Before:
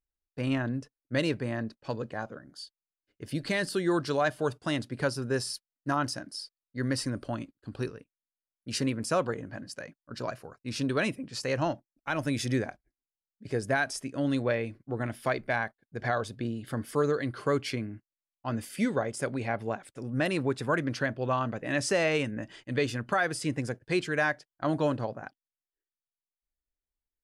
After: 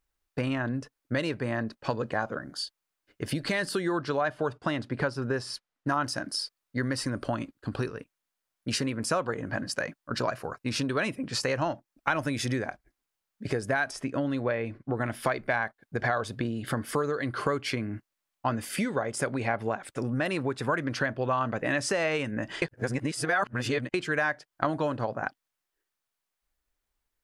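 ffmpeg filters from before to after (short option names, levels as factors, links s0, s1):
-filter_complex "[0:a]asettb=1/sr,asplit=3[s0][s1][s2];[s0]atrim=end=3.914[s3];[s1]atrim=start=3.91:end=5.88,asetpts=PTS-STARTPTS,afade=t=in:d=0.004:c=qsin,afade=t=out:st=1.966:d=0.004:c=qsin,aemphasis=mode=reproduction:type=50fm[s4];[s2]atrim=start=5.876[s5];[s3][s4]acrossfade=d=0.004:c1=hsin:c2=qsin[s6];[s6][s5]acrossfade=d=0.004:c1=qsin:c2=hsin,asettb=1/sr,asplit=3[s7][s8][s9];[s7]atrim=end=13.914[s10];[s8]atrim=start=13.91:end=14.95,asetpts=PTS-STARTPTS,afade=t=in:d=0.004:c=qsin,afade=t=out:st=1.036:d=0.004:c=qsin,lowpass=f=3100:p=1[s11];[s9]atrim=start=14.946[s12];[s10][s11]acrossfade=d=0.004:c1=hsin:c2=qsin[s13];[s13][s12]acrossfade=d=0.004:c1=qsin:c2=hsin,asplit=3[s14][s15][s16];[s14]atrim=end=22.622[s17];[s15]atrim=start=22.618:end=23.942,asetpts=PTS-STARTPTS,areverse[s18];[s16]atrim=start=23.938[s19];[s17][s18]acrossfade=d=0.004:c1=hsin:c2=hsin[s20];[s20][s19]acrossfade=d=0.004:c1=hsin:c2=hsin,acompressor=threshold=0.0141:ratio=6,equalizer=f=1200:w=0.65:g=5.5,volume=2.82"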